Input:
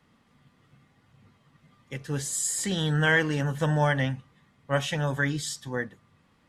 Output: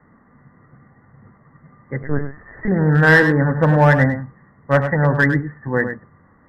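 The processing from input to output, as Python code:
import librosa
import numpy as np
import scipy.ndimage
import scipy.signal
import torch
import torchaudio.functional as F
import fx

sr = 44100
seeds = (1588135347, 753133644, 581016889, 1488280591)

p1 = scipy.signal.sosfilt(scipy.signal.cheby1(8, 1.0, 2000.0, 'lowpass', fs=sr, output='sos'), x)
p2 = 10.0 ** (-19.5 / 20.0) * (np.abs((p1 / 10.0 ** (-19.5 / 20.0) + 3.0) % 4.0 - 2.0) - 1.0)
p3 = p1 + (p2 * 10.0 ** (-7.0 / 20.0))
p4 = p3 + 10.0 ** (-9.0 / 20.0) * np.pad(p3, (int(102 * sr / 1000.0), 0))[:len(p3)]
p5 = fx.lpc_vocoder(p4, sr, seeds[0], excitation='pitch_kept', order=10, at=(2.03, 2.68))
y = p5 * 10.0 ** (8.5 / 20.0)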